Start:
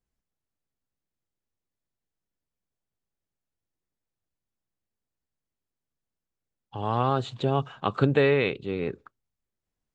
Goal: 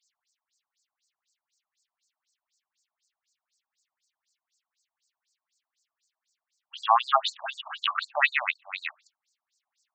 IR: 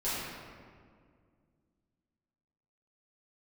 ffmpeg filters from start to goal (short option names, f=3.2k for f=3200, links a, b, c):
-filter_complex "[0:a]acrossover=split=140|540|2200[a][b][c][d];[d]acompressor=threshold=-50dB:ratio=6[e];[a][b][c][e]amix=inputs=4:normalize=0,crystalizer=i=8.5:c=0,afftfilt=real='re*between(b*sr/1024,820*pow(6100/820,0.5+0.5*sin(2*PI*4*pts/sr))/1.41,820*pow(6100/820,0.5+0.5*sin(2*PI*4*pts/sr))*1.41)':imag='im*between(b*sr/1024,820*pow(6100/820,0.5+0.5*sin(2*PI*4*pts/sr))/1.41,820*pow(6100/820,0.5+0.5*sin(2*PI*4*pts/sr))*1.41)':win_size=1024:overlap=0.75,volume=8dB"